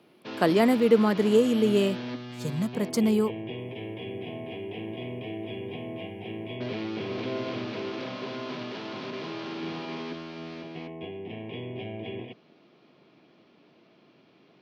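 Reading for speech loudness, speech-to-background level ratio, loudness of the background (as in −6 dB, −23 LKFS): −24.0 LKFS, 12.5 dB, −36.5 LKFS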